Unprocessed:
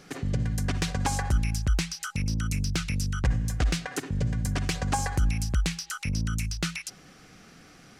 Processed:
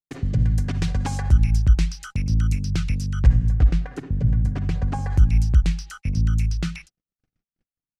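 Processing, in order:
RIAA equalisation playback
mains-hum notches 50/100/150/200 Hz
noise gate −37 dBFS, range −58 dB
high-shelf EQ 2,600 Hz +11 dB, from 0:03.48 −2 dB, from 0:05.10 +9 dB
level −4 dB

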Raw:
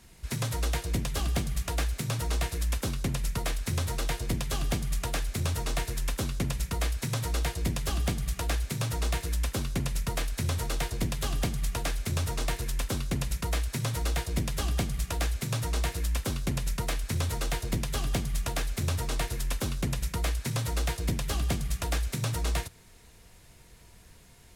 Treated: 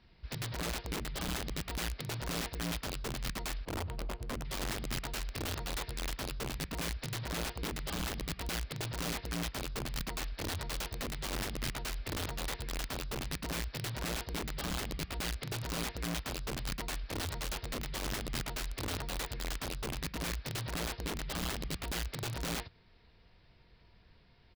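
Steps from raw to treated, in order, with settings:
0:03.65–0:04.45: running median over 25 samples
downsampling to 11,025 Hz
wrap-around overflow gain 24.5 dB
level −7.5 dB

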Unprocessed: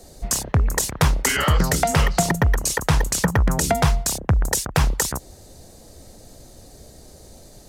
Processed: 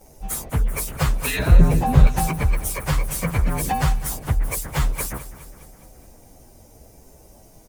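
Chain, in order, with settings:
partials spread apart or drawn together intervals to 111%
0:01.39–0:02.07: tilt shelving filter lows +9 dB, about 830 Hz
on a send: repeating echo 207 ms, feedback 57%, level −15 dB

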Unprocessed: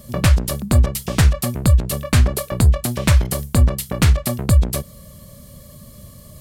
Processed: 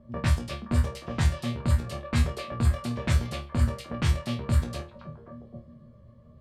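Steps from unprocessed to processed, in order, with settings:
resonators tuned to a chord D#2 fifth, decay 0.27 s
echo through a band-pass that steps 261 ms, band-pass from 3,400 Hz, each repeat −1.4 octaves, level −3 dB
low-pass that shuts in the quiet parts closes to 1,100 Hz, open at −18.5 dBFS

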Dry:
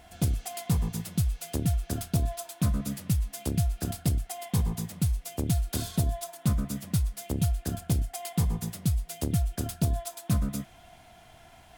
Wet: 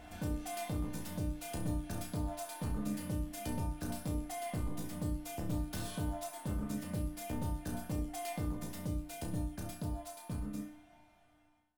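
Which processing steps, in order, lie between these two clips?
fade-out on the ending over 3.70 s
high-shelf EQ 2,900 Hz −8 dB
in parallel at +3 dB: downward compressor, threshold −38 dBFS, peak gain reduction 16 dB
on the sum: soft clipping −28 dBFS, distortion −8 dB
tuned comb filter 300 Hz, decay 0.52 s, harmonics all, mix 90%
flutter between parallel walls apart 5.7 metres, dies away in 0.31 s
on a send at −13 dB: convolution reverb RT60 0.40 s, pre-delay 3 ms
on the sum: level +10.5 dB

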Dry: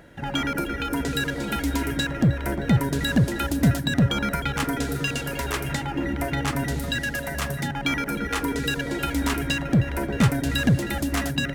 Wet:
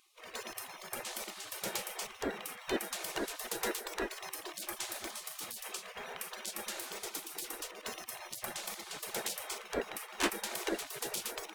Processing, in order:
gate on every frequency bin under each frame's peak −25 dB weak
parametric band 320 Hz +12 dB 2 octaves
level −2 dB

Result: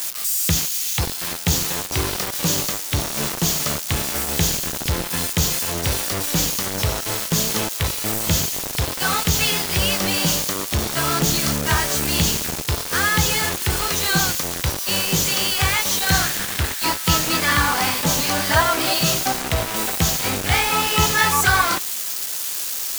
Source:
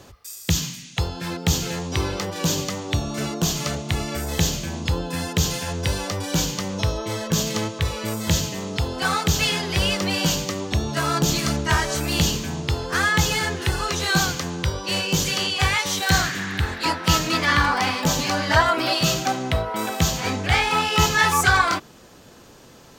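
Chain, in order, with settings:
spike at every zero crossing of −18.5 dBFS
bit reduction 4 bits

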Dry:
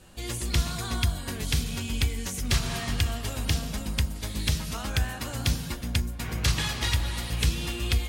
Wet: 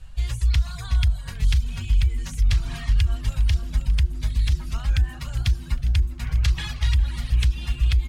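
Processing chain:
RIAA equalisation playback
reverb reduction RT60 0.86 s
guitar amp tone stack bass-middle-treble 10-0-10
brickwall limiter −19 dBFS, peak gain reduction 11.5 dB
echo with shifted repeats 405 ms, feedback 53%, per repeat −100 Hz, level −19 dB
level +6.5 dB

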